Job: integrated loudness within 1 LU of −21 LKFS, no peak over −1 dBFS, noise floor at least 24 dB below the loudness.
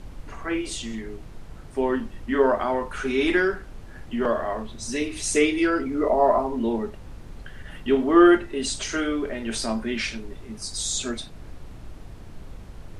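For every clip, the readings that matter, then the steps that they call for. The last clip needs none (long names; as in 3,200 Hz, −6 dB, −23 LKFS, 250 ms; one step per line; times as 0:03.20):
mains hum 50 Hz; hum harmonics up to 350 Hz; level of the hum −42 dBFS; background noise floor −42 dBFS; target noise floor −48 dBFS; integrated loudness −24.0 LKFS; sample peak −4.5 dBFS; target loudness −21.0 LKFS
→ hum removal 50 Hz, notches 7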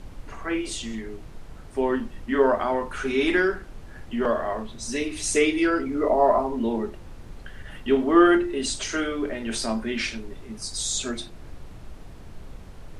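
mains hum none found; background noise floor −43 dBFS; target noise floor −49 dBFS
→ noise reduction from a noise print 6 dB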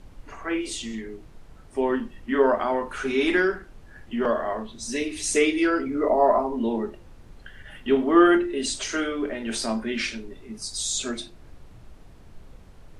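background noise floor −48 dBFS; target noise floor −49 dBFS
→ noise reduction from a noise print 6 dB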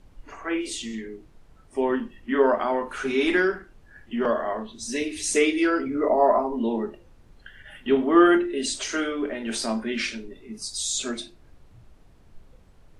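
background noise floor −54 dBFS; integrated loudness −24.5 LKFS; sample peak −6.0 dBFS; target loudness −21.0 LKFS
→ level +3.5 dB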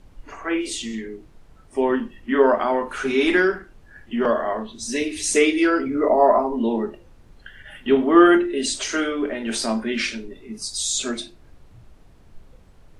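integrated loudness −21.0 LKFS; sample peak −2.5 dBFS; background noise floor −50 dBFS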